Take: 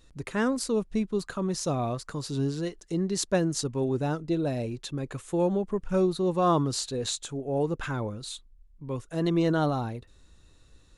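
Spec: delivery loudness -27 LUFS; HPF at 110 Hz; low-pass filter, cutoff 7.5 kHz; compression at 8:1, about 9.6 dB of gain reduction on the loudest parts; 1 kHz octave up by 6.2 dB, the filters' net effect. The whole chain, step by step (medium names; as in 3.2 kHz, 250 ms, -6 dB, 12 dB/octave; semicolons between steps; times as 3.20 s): high-pass 110 Hz; low-pass 7.5 kHz; peaking EQ 1 kHz +8 dB; compression 8:1, threshold -24 dBFS; trim +4 dB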